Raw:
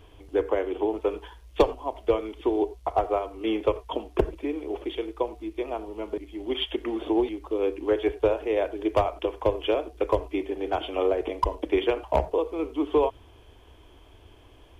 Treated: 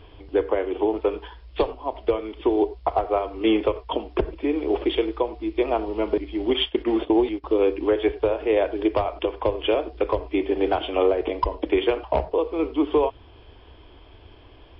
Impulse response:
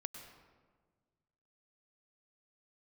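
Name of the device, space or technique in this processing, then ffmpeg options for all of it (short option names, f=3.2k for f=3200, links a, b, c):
low-bitrate web radio: -filter_complex "[0:a]asettb=1/sr,asplit=3[a][b][c];[a]atrim=end=6.504[d];[b]atrim=start=6.5:end=7.44,asetpts=PTS-STARTPTS,afade=t=in:d=0.004:c=qsin,afade=t=out:st=0.936:d=0.004:c=qsin,agate=range=-18dB:threshold=-32dB:ratio=16:detection=peak[e];[c]atrim=start=7.436[f];[d][e]acrossfade=d=0.004:c1=hsin:c2=qsin[g];[g][f]acrossfade=d=0.004:c1=qsin:c2=hsin,dynaudnorm=f=200:g=31:m=6dB,alimiter=limit=-15dB:level=0:latency=1:release=482,volume=5dB" -ar 12000 -c:a libmp3lame -b:a 32k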